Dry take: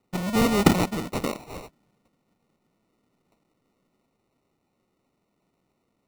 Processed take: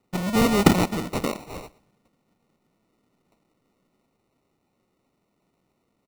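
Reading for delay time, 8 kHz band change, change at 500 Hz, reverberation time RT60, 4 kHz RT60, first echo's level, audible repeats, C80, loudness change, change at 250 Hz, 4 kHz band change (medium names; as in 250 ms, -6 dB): 117 ms, +1.5 dB, +1.5 dB, no reverb, no reverb, -21.0 dB, 1, no reverb, +1.5 dB, +1.5 dB, +1.5 dB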